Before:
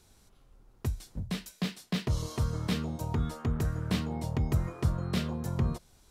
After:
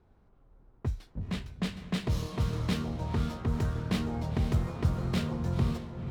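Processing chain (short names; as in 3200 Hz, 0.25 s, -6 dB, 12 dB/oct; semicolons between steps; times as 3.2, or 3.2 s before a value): diffused feedback echo 0.497 s, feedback 45%, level -8 dB; low-pass opened by the level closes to 1200 Hz, open at -23.5 dBFS; running maximum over 3 samples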